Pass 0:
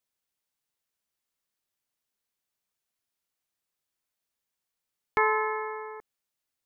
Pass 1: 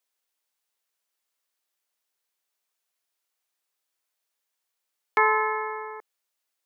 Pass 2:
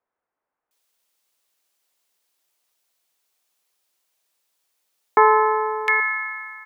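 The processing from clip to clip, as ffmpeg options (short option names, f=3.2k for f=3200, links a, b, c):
-af "highpass=420,volume=4dB"
-filter_complex "[0:a]acrossover=split=1600[a][b];[b]adelay=710[c];[a][c]amix=inputs=2:normalize=0,volume=9dB"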